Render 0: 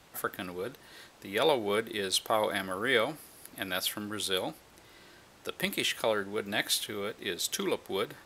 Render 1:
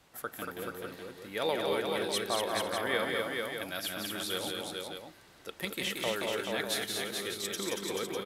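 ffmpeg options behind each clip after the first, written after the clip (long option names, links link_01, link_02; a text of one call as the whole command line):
ffmpeg -i in.wav -af "aecho=1:1:178|233|355|434|499|600:0.596|0.596|0.119|0.631|0.119|0.398,volume=-5.5dB" out.wav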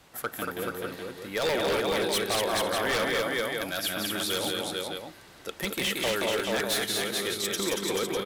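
ffmpeg -i in.wav -af "aeval=exprs='0.0447*(abs(mod(val(0)/0.0447+3,4)-2)-1)':channel_layout=same,volume=6.5dB" out.wav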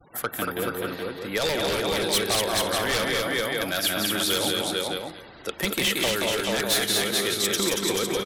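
ffmpeg -i in.wav -filter_complex "[0:a]afftfilt=real='re*gte(hypot(re,im),0.00282)':imag='im*gte(hypot(re,im),0.00282)':win_size=1024:overlap=0.75,acrossover=split=180|3000[link_01][link_02][link_03];[link_02]acompressor=threshold=-30dB:ratio=6[link_04];[link_01][link_04][link_03]amix=inputs=3:normalize=0,aecho=1:1:230:0.178,volume=6dB" out.wav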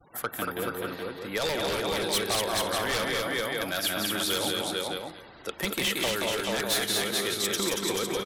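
ffmpeg -i in.wav -af "equalizer=frequency=1000:width=1.5:gain=2.5,volume=-4dB" out.wav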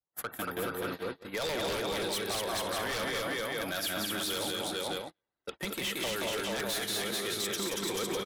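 ffmpeg -i in.wav -af "agate=range=-41dB:threshold=-35dB:ratio=16:detection=peak,alimiter=limit=-21.5dB:level=0:latency=1:release=198,asoftclip=type=hard:threshold=-28.5dB" out.wav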